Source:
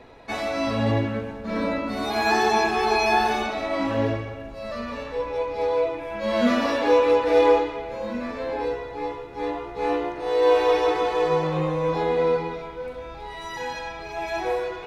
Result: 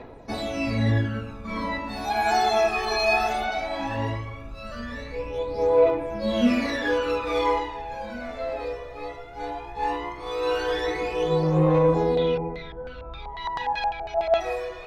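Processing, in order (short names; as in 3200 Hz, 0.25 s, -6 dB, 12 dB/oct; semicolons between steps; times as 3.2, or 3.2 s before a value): phaser 0.17 Hz, delay 1.7 ms, feedback 71%; 12.15–14.39 LFO low-pass square 2.3 Hz -> 8.3 Hz 780–3700 Hz; gain -4 dB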